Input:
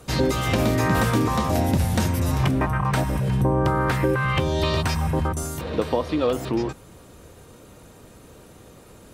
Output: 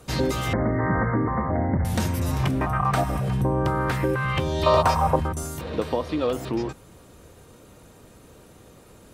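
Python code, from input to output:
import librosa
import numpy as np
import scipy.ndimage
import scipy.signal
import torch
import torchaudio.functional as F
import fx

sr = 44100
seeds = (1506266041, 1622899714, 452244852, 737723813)

y = fx.brickwall_lowpass(x, sr, high_hz=2200.0, at=(0.53, 1.85))
y = fx.small_body(y, sr, hz=(720.0, 1200.0), ring_ms=45, db=13, at=(2.66, 3.33))
y = fx.band_shelf(y, sr, hz=780.0, db=13.5, octaves=1.7, at=(4.66, 5.16))
y = y * 10.0 ** (-2.5 / 20.0)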